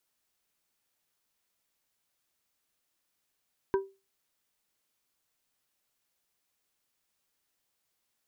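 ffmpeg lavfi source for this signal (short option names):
-f lavfi -i "aevalsrc='0.0944*pow(10,-3*t/0.28)*sin(2*PI*389*t)+0.0422*pow(10,-3*t/0.147)*sin(2*PI*972.5*t)+0.0188*pow(10,-3*t/0.106)*sin(2*PI*1556*t)':d=0.89:s=44100"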